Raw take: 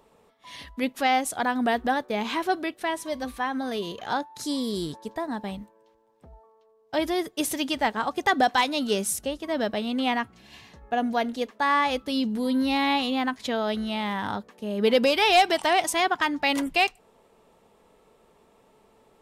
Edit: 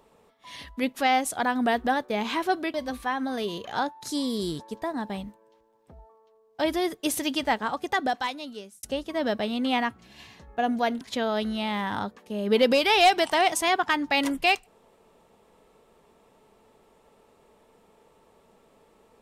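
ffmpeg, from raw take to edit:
ffmpeg -i in.wav -filter_complex "[0:a]asplit=4[link_01][link_02][link_03][link_04];[link_01]atrim=end=2.742[link_05];[link_02]atrim=start=3.078:end=9.17,asetpts=PTS-STARTPTS,afade=type=out:start_time=4.722:duration=1.37[link_06];[link_03]atrim=start=9.17:end=11.352,asetpts=PTS-STARTPTS,afade=type=in:duration=0.004:curve=hsin[link_07];[link_04]atrim=start=13.328[link_08];[link_06][link_07]concat=n=2:v=0:a=1[link_09];[link_05][link_09]acrossfade=duration=0.004:curve1=hsin:curve2=hsin[link_10];[link_10][link_08]acrossfade=duration=0.004:curve1=hsin:curve2=hsin" out.wav

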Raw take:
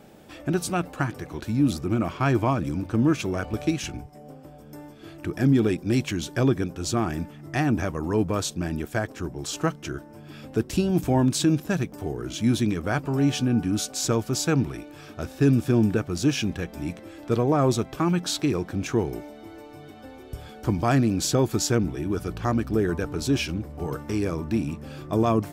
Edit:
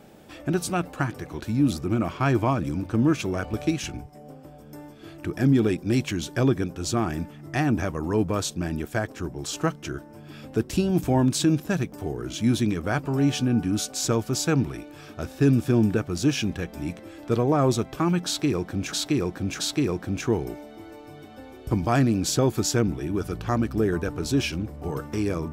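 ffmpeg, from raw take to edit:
ffmpeg -i in.wav -filter_complex "[0:a]asplit=4[link_01][link_02][link_03][link_04];[link_01]atrim=end=18.922[link_05];[link_02]atrim=start=18.248:end=18.922[link_06];[link_03]atrim=start=18.248:end=20.372[link_07];[link_04]atrim=start=20.668[link_08];[link_05][link_06]acrossfade=duration=0.004:curve1=hsin:curve2=hsin[link_09];[link_09][link_07]acrossfade=duration=0.004:curve1=hsin:curve2=hsin[link_10];[link_10][link_08]acrossfade=duration=0.004:curve1=hsin:curve2=hsin" out.wav

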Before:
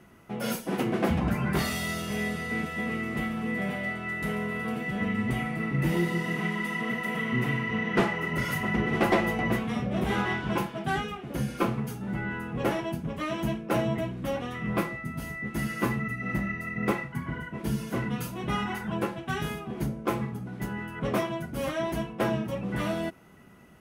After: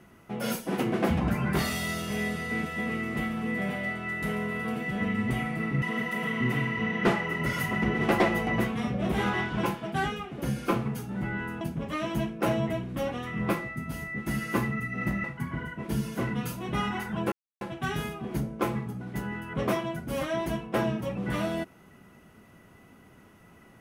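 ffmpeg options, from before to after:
ffmpeg -i in.wav -filter_complex "[0:a]asplit=5[link_01][link_02][link_03][link_04][link_05];[link_01]atrim=end=5.822[link_06];[link_02]atrim=start=6.738:end=12.532[link_07];[link_03]atrim=start=12.888:end=16.522[link_08];[link_04]atrim=start=16.988:end=19.07,asetpts=PTS-STARTPTS,afade=type=out:start_time=2.078:duration=0.004:curve=hsin,apad=pad_dur=0.29[link_09];[link_05]atrim=start=19.07,asetpts=PTS-STARTPTS,afade=type=in:duration=0.004:curve=hsin[link_10];[link_06][link_07]acrossfade=duration=0.004:curve1=hsin:curve2=hsin[link_11];[link_11][link_08]acrossfade=duration=0.004:curve1=hsin:curve2=hsin[link_12];[link_09][link_10]concat=n=2:v=0:a=1[link_13];[link_12][link_13]acrossfade=duration=0.004:curve1=hsin:curve2=hsin" out.wav

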